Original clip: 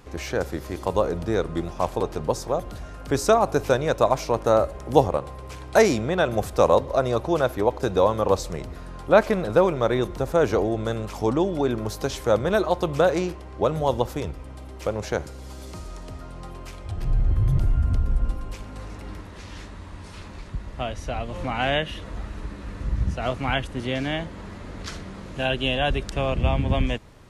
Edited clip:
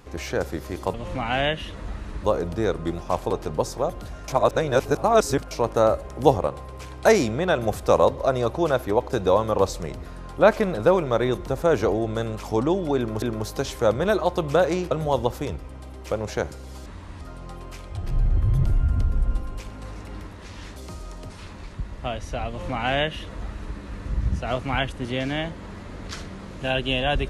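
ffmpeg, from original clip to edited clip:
-filter_complex "[0:a]asplit=11[s0][s1][s2][s3][s4][s5][s6][s7][s8][s9][s10];[s0]atrim=end=0.942[s11];[s1]atrim=start=21.228:end=22.532[s12];[s2]atrim=start=0.938:end=2.982[s13];[s3]atrim=start=2.978:end=4.212,asetpts=PTS-STARTPTS,areverse[s14];[s4]atrim=start=4.208:end=11.922[s15];[s5]atrim=start=11.668:end=13.362[s16];[s6]atrim=start=13.658:end=15.612[s17];[s7]atrim=start=19.698:end=20.052[s18];[s8]atrim=start=16.148:end=19.702[s19];[s9]atrim=start=15.608:end=16.152[s20];[s10]atrim=start=20.048[s21];[s11][s12]acrossfade=d=0.004:c1=hsin:c2=hsin[s22];[s22][s13]acrossfade=d=0.004:c1=hsin:c2=hsin[s23];[s23][s14]acrossfade=d=0.004:c1=hsin:c2=hsin[s24];[s24][s15]acrossfade=d=0.004:c1=hsin:c2=hsin[s25];[s25][s16]acrossfade=d=0.004:c1=hsin:c2=hsin[s26];[s26][s17]acrossfade=d=0.004:c1=hsin:c2=hsin[s27];[s27][s18]acrossfade=d=0.004:c1=hsin:c2=hsin[s28];[s28][s19]acrossfade=d=0.004:c1=hsin:c2=hsin[s29];[s29][s20]acrossfade=d=0.004:c1=hsin:c2=hsin[s30];[s30][s21]acrossfade=d=0.004:c1=hsin:c2=hsin"

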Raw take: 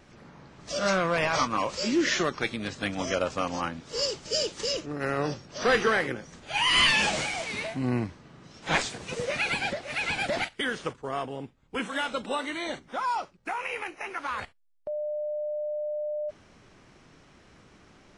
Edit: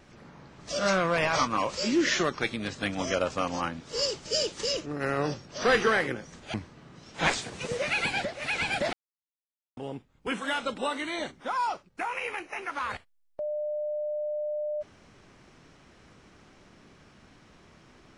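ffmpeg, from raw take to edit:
-filter_complex "[0:a]asplit=4[s0][s1][s2][s3];[s0]atrim=end=6.542[s4];[s1]atrim=start=8.018:end=10.41,asetpts=PTS-STARTPTS,afade=t=out:st=2.388:d=0.004:c=hsin[s5];[s2]atrim=start=10.41:end=11.25,asetpts=PTS-STARTPTS,volume=0[s6];[s3]atrim=start=11.25,asetpts=PTS-STARTPTS,afade=t=in:d=0.004:c=hsin[s7];[s5][s6][s7]concat=n=3:v=0:a=1[s8];[s4][s8]acrossfade=d=0.004:c1=hsin:c2=hsin"

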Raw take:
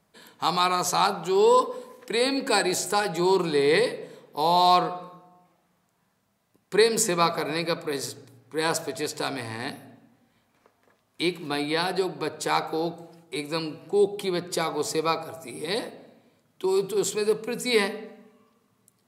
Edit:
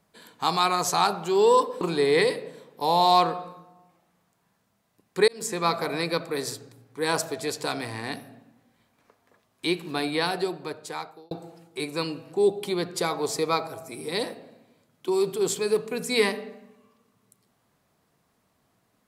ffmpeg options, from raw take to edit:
-filter_complex "[0:a]asplit=4[s0][s1][s2][s3];[s0]atrim=end=1.812[s4];[s1]atrim=start=3.368:end=6.84,asetpts=PTS-STARTPTS,afade=t=out:st=3.468:d=0.004:c=hsin[s5];[s2]atrim=start=6.84:end=12.87,asetpts=PTS-STARTPTS,afade=t=in:d=0.68:c=qsin,afade=t=out:st=4.96:d=1.07[s6];[s3]atrim=start=12.87,asetpts=PTS-STARTPTS,afade=t=in:d=0.004:c=hsin[s7];[s5][s6][s7]concat=n=3:v=0:a=1[s8];[s4][s8]acrossfade=d=0.004:c1=hsin:c2=hsin"

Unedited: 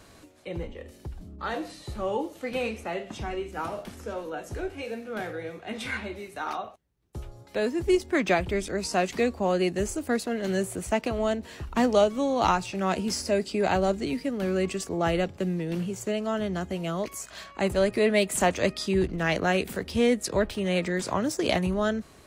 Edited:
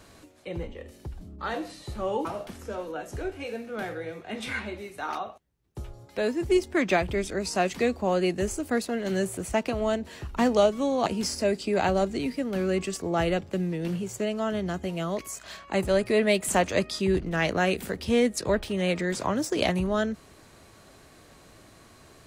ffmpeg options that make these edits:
-filter_complex "[0:a]asplit=3[s0][s1][s2];[s0]atrim=end=2.252[s3];[s1]atrim=start=3.628:end=12.442[s4];[s2]atrim=start=12.928[s5];[s3][s4]acrossfade=d=0.004:c1=hsin:c2=hsin[s6];[s6][s5]acrossfade=d=0.004:c1=hsin:c2=hsin"

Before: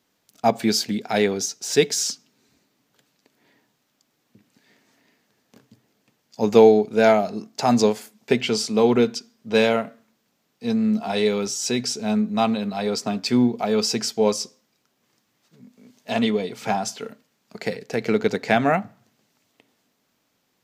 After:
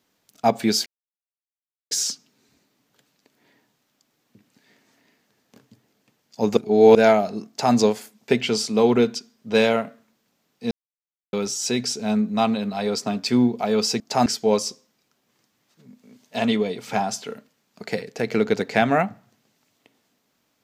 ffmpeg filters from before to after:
-filter_complex "[0:a]asplit=9[s0][s1][s2][s3][s4][s5][s6][s7][s8];[s0]atrim=end=0.86,asetpts=PTS-STARTPTS,afade=t=out:st=0.856:d=0.004:c=hsin[s9];[s1]atrim=start=0.86:end=1.91,asetpts=PTS-STARTPTS,volume=0[s10];[s2]atrim=start=1.91:end=6.572,asetpts=PTS-STARTPTS,afade=t=in:d=0.004:c=hsin[s11];[s3]atrim=start=6.568:end=6.952,asetpts=PTS-STARTPTS,areverse[s12];[s4]atrim=start=6.948:end=10.71,asetpts=PTS-STARTPTS,afade=t=out:st=3.758:d=0.004:c=hsin[s13];[s5]atrim=start=10.71:end=11.33,asetpts=PTS-STARTPTS,volume=0[s14];[s6]atrim=start=11.33:end=14.002,asetpts=PTS-STARTPTS,afade=t=in:d=0.004:c=hsin[s15];[s7]atrim=start=7.478:end=7.742[s16];[s8]atrim=start=13.998[s17];[s9][s10][s11]concat=n=3:v=0:a=1[s18];[s18][s12]acrossfade=d=0.004:c1=hsin:c2=hsin[s19];[s13][s14][s15]concat=n=3:v=0:a=1[s20];[s19][s20]acrossfade=d=0.004:c1=hsin:c2=hsin[s21];[s21][s16]acrossfade=d=0.004:c1=hsin:c2=hsin[s22];[s22][s17]acrossfade=d=0.004:c1=hsin:c2=hsin"

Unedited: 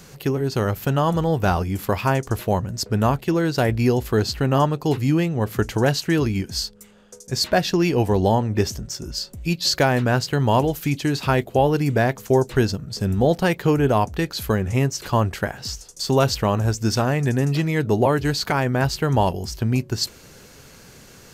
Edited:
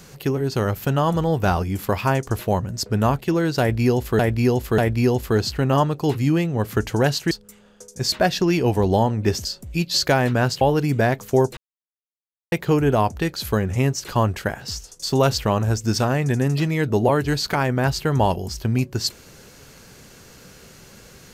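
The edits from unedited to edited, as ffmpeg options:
-filter_complex "[0:a]asplit=8[s0][s1][s2][s3][s4][s5][s6][s7];[s0]atrim=end=4.192[s8];[s1]atrim=start=3.598:end=4.192[s9];[s2]atrim=start=3.598:end=6.132[s10];[s3]atrim=start=6.628:end=8.772[s11];[s4]atrim=start=9.158:end=10.322[s12];[s5]atrim=start=11.578:end=12.54,asetpts=PTS-STARTPTS,afade=t=out:st=0.958:d=0.004:c=hsin[s13];[s6]atrim=start=12.54:end=13.49,asetpts=PTS-STARTPTS,volume=0[s14];[s7]atrim=start=13.49,asetpts=PTS-STARTPTS,afade=t=in:d=0.004:c=hsin[s15];[s8][s9]acrossfade=d=0.004:c1=hsin:c2=hsin[s16];[s16][s10]acrossfade=d=0.004:c1=hsin:c2=hsin[s17];[s17][s11]acrossfade=d=0.004:c1=hsin:c2=hsin[s18];[s18][s12]acrossfade=d=0.004:c1=hsin:c2=hsin[s19];[s13][s14][s15]concat=n=3:v=0:a=1[s20];[s19][s20]acrossfade=d=0.004:c1=hsin:c2=hsin"

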